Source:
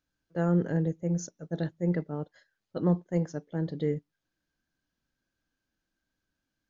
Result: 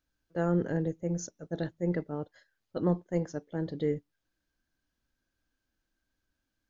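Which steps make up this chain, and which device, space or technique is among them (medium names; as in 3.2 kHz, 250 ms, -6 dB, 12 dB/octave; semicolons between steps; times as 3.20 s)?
low shelf boost with a cut just above (bass shelf 80 Hz +6.5 dB; peaking EQ 160 Hz -6 dB 0.54 oct)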